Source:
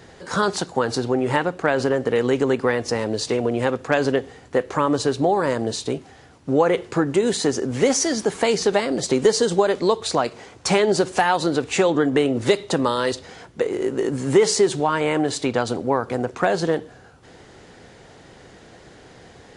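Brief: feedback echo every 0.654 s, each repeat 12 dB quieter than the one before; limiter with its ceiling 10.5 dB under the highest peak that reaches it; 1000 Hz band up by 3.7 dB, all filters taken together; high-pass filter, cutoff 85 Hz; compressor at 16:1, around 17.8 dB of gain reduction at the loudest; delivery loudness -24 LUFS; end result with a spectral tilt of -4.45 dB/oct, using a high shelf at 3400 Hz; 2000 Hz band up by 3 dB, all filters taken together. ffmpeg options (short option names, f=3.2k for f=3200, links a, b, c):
-af "highpass=85,equalizer=f=1k:t=o:g=4.5,equalizer=f=2k:t=o:g=3.5,highshelf=f=3.4k:g=-5,acompressor=threshold=-29dB:ratio=16,alimiter=limit=-24dB:level=0:latency=1,aecho=1:1:654|1308|1962:0.251|0.0628|0.0157,volume=12dB"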